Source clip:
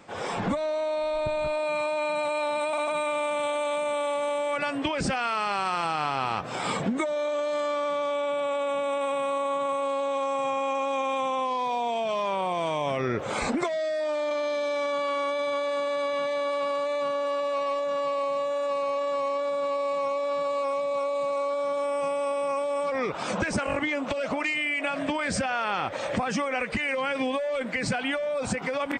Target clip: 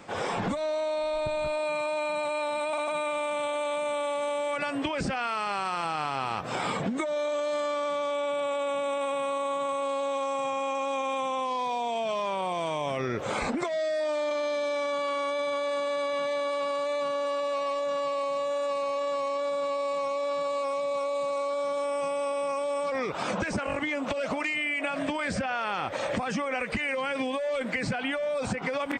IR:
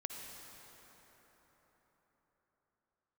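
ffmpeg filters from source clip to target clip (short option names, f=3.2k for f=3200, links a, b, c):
-filter_complex "[0:a]acrossover=split=3400|7900[a][b][c];[a]acompressor=threshold=-31dB:ratio=4[d];[b]acompressor=threshold=-50dB:ratio=4[e];[c]acompressor=threshold=-59dB:ratio=4[f];[d][e][f]amix=inputs=3:normalize=0,volume=3.5dB"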